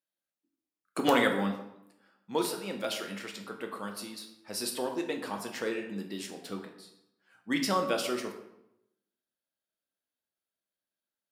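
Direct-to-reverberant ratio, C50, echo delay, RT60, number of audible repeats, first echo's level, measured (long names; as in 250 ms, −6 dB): 2.5 dB, 8.0 dB, no echo audible, 0.80 s, no echo audible, no echo audible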